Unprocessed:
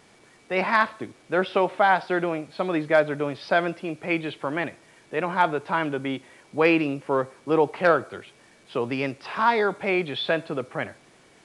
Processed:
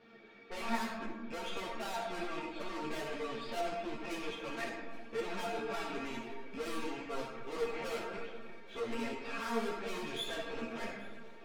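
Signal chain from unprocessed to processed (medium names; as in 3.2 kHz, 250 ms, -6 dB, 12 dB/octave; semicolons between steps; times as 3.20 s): rattle on loud lows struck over -40 dBFS, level -29 dBFS; low-pass 3.9 kHz 24 dB/octave; peaking EQ 350 Hz +4.5 dB 0.39 oct; comb of notches 1 kHz; valve stage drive 36 dB, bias 0.45; feedback comb 230 Hz, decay 0.17 s, harmonics all, mix 90%; shuffle delay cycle 1373 ms, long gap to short 1.5:1, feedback 58%, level -23 dB; algorithmic reverb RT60 1.5 s, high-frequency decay 0.45×, pre-delay 10 ms, DRR 1.5 dB; three-phase chorus; trim +10 dB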